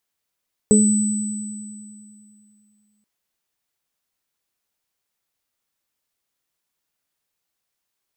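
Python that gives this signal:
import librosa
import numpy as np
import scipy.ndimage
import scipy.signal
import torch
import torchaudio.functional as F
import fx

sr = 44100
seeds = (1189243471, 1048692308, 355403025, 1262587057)

y = fx.additive_free(sr, length_s=2.33, hz=210.0, level_db=-11.0, upper_db=(-0.5, -5), decay_s=2.54, upper_decays_s=(0.31, 2.48), upper_hz=(427.0, 8000.0))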